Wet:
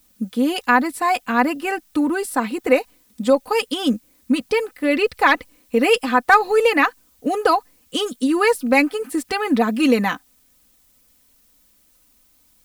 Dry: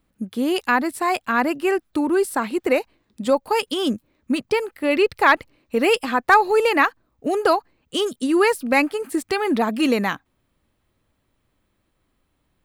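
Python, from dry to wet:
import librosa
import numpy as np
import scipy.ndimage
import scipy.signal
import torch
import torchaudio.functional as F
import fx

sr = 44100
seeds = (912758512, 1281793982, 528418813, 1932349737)

y = fx.dmg_noise_colour(x, sr, seeds[0], colour='blue', level_db=-60.0)
y = y + 0.65 * np.pad(y, (int(4.0 * sr / 1000.0), 0))[:len(y)]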